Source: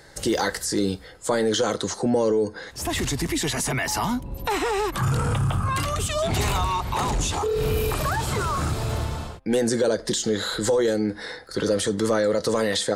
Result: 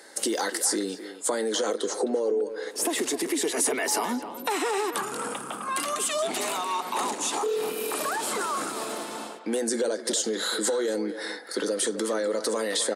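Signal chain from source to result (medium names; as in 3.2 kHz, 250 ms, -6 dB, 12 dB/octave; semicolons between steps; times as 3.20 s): 1.68–4.24 s: peaking EQ 440 Hz +11 dB 0.8 oct; compression 12:1, threshold -23 dBFS, peak gain reduction 15 dB; steep high-pass 230 Hz 36 dB/octave; peaking EQ 9.5 kHz +8.5 dB 0.57 oct; speakerphone echo 260 ms, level -10 dB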